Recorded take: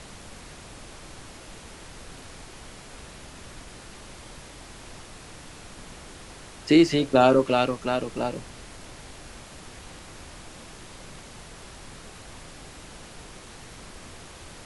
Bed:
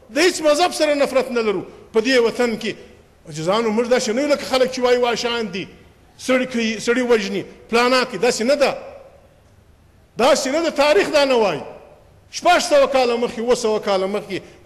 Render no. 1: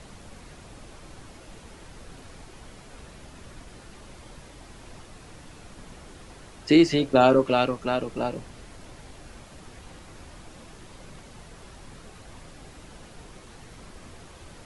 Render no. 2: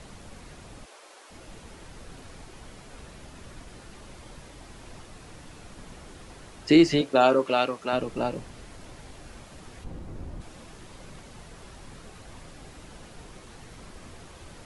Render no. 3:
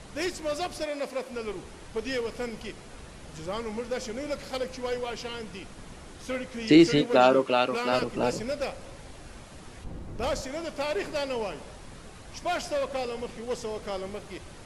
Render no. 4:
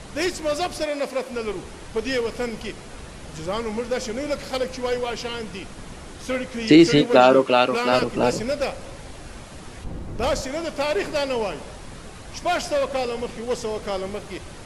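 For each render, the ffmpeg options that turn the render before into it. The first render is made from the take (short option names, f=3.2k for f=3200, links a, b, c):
-af "afftdn=nr=6:nf=-45"
-filter_complex "[0:a]asplit=3[a][b][c];[a]afade=t=out:st=0.84:d=0.02[d];[b]highpass=f=430:w=0.5412,highpass=f=430:w=1.3066,afade=t=in:st=0.84:d=0.02,afade=t=out:st=1.3:d=0.02[e];[c]afade=t=in:st=1.3:d=0.02[f];[d][e][f]amix=inputs=3:normalize=0,asettb=1/sr,asplit=3[g][h][i];[g]atrim=end=7.014[j];[h]atrim=start=7.01:end=7.93,asetpts=PTS-STARTPTS,afade=t=in:d=0.004:c=qsin,afade=t=out:st=0.916:d=0.004:c=qsin,highpass=f=420:p=1[k];[i]atrim=start=7.926[l];[j][k]acrossfade=d=0.004:c1=hsin:c2=qsin[m];[m][l]acrossfade=d=0.004:c1=qsin:c2=hsin,asplit=3[n][o][p];[n]afade=t=out:st=9.83:d=0.02[q];[o]tiltshelf=f=770:g=9,afade=t=in:st=9.83:d=0.02,afade=t=out:st=10.4:d=0.02[r];[p]afade=t=in:st=10.4:d=0.02[s];[q][r][s]amix=inputs=3:normalize=0"
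-filter_complex "[1:a]volume=-15.5dB[a];[0:a][a]amix=inputs=2:normalize=0"
-af "volume=6.5dB,alimiter=limit=-3dB:level=0:latency=1"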